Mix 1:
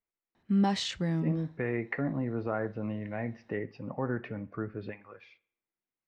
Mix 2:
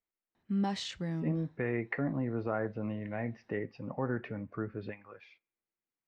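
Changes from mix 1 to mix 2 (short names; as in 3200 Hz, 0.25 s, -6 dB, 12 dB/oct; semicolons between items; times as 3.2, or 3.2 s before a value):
speech: send -11.5 dB; background -5.5 dB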